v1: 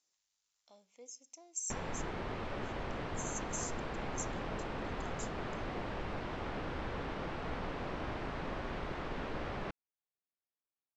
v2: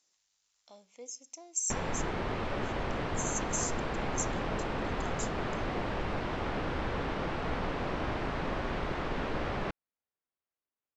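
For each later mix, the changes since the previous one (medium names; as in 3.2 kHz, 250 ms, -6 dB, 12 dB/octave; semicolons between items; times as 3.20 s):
speech +7.0 dB; background +6.0 dB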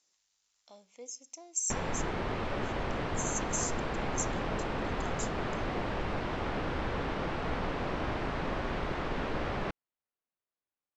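no change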